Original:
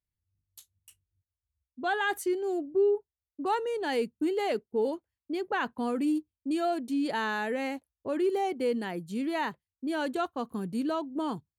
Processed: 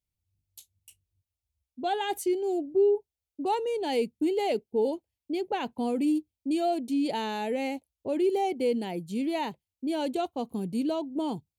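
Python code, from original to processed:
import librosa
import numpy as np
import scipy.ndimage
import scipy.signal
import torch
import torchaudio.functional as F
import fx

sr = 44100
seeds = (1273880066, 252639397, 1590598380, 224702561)

y = fx.band_shelf(x, sr, hz=1400.0, db=-12.5, octaves=1.0)
y = y * 10.0 ** (2.0 / 20.0)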